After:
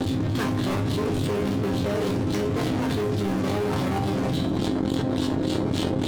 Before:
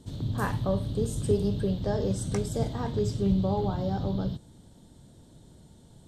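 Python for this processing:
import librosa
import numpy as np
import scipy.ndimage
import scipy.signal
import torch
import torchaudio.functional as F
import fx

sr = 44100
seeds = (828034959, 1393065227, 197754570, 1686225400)

p1 = fx.curve_eq(x, sr, hz=(160.0, 930.0, 4100.0), db=(0, -4, 8))
p2 = fx.room_flutter(p1, sr, wall_m=8.6, rt60_s=0.24)
p3 = fx.filter_lfo_lowpass(p2, sr, shape='sine', hz=3.5, low_hz=740.0, high_hz=3100.0, q=0.97)
p4 = fx.hum_notches(p3, sr, base_hz=60, count=6)
p5 = fx.fuzz(p4, sr, gain_db=46.0, gate_db=-52.0)
p6 = p4 + (p5 * librosa.db_to_amplitude(-5.0))
p7 = fx.highpass(p6, sr, hz=80.0, slope=6)
p8 = fx.leveller(p7, sr, passes=2)
p9 = fx.peak_eq(p8, sr, hz=300.0, db=11.5, octaves=0.44)
p10 = fx.resonator_bank(p9, sr, root=41, chord='minor', decay_s=0.27)
p11 = p10 + fx.echo_feedback(p10, sr, ms=70, feedback_pct=52, wet_db=-18.5, dry=0)
p12 = fx.env_flatten(p11, sr, amount_pct=100)
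y = p12 * librosa.db_to_amplitude(-4.5)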